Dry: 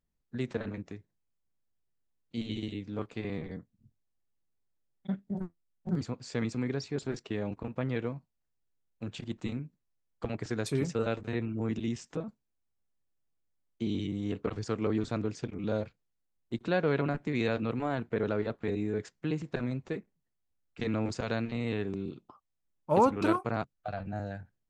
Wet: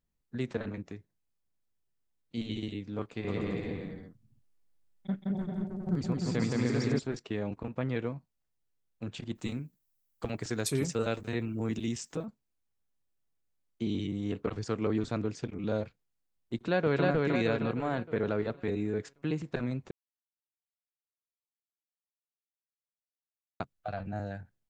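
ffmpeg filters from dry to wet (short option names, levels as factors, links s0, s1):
-filter_complex "[0:a]asplit=3[s0][s1][s2];[s0]afade=t=out:st=3.26:d=0.02[s3];[s1]aecho=1:1:170|297.5|393.1|464.8|518.6:0.794|0.631|0.501|0.398|0.316,afade=t=in:st=3.26:d=0.02,afade=t=out:st=6.98:d=0.02[s4];[s2]afade=t=in:st=6.98:d=0.02[s5];[s3][s4][s5]amix=inputs=3:normalize=0,asettb=1/sr,asplit=3[s6][s7][s8];[s6]atrim=end=9.354[s9];[s7]atrim=start=9.35:end=12.26,asetpts=PTS-STARTPTS,afade=t=in:d=0.004:c=qsin,afade=t=out:st=2.906:d=0.004:c=qsin,aemphasis=mode=production:type=50fm[s10];[s8]atrim=start=12.256[s11];[s9][s10]acrossfade=d=0.004:c1=hsin:c2=qsin[s12];[s12][s11]acrossfade=d=0.004:c1=qsin:c2=hsin,asplit=2[s13][s14];[s14]afade=t=in:st=16.55:d=0.01,afade=t=out:st=17.05:d=0.01,aecho=0:1:310|620|930|1240|1550|1860|2170:0.841395|0.420698|0.210349|0.105174|0.0525872|0.0262936|0.0131468[s15];[s13][s15]amix=inputs=2:normalize=0,asplit=3[s16][s17][s18];[s16]atrim=end=19.91,asetpts=PTS-STARTPTS,afade=t=out:st=19.906:d=0.004:c=hsin[s19];[s17]atrim=start=19.91:end=23.6,asetpts=PTS-STARTPTS,volume=0[s20];[s18]atrim=start=23.6,asetpts=PTS-STARTPTS,afade=t=in:d=0.004:c=hsin[s21];[s19][s20][s21]concat=n=3:v=0:a=1"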